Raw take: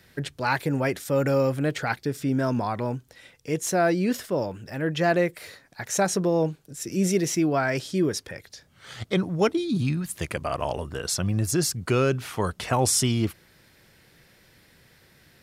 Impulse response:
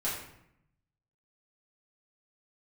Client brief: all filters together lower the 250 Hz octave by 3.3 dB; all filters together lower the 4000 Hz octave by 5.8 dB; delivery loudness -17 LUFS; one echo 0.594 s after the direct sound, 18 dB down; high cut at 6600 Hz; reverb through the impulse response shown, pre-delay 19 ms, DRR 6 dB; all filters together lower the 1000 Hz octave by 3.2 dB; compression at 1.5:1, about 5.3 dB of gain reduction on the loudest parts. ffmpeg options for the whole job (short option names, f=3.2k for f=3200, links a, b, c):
-filter_complex "[0:a]lowpass=6.6k,equalizer=f=250:t=o:g=-4.5,equalizer=f=1k:t=o:g=-4,equalizer=f=4k:t=o:g=-7,acompressor=threshold=-35dB:ratio=1.5,aecho=1:1:594:0.126,asplit=2[a][b];[1:a]atrim=start_sample=2205,adelay=19[c];[b][c]afir=irnorm=-1:irlink=0,volume=-12dB[d];[a][d]amix=inputs=2:normalize=0,volume=15dB"